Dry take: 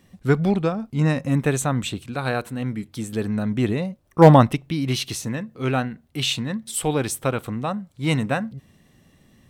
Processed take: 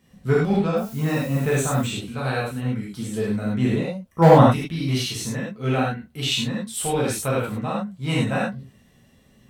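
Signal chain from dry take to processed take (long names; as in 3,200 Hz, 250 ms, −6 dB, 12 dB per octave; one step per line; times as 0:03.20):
0:00.76–0:01.80: background noise blue −45 dBFS
reverb whose tail is shaped and stops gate 130 ms flat, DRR −6.5 dB
level −7 dB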